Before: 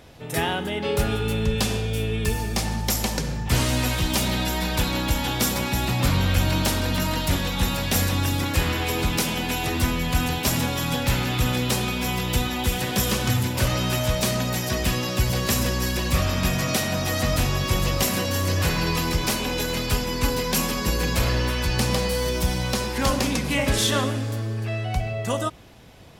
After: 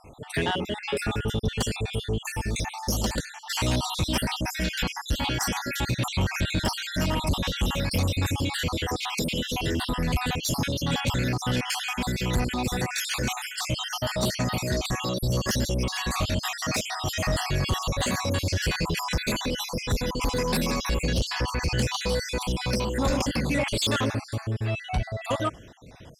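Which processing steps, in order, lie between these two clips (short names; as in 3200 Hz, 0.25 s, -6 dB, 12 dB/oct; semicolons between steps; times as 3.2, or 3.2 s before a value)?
random spectral dropouts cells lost 54%; LPF 9200 Hz 12 dB/oct; soft clip -20 dBFS, distortion -14 dB; gain +2 dB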